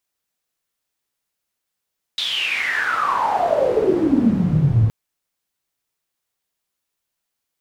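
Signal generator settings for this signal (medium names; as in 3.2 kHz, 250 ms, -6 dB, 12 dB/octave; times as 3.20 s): swept filtered noise pink, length 2.72 s bandpass, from 3.8 kHz, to 100 Hz, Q 11, exponential, gain ramp +8 dB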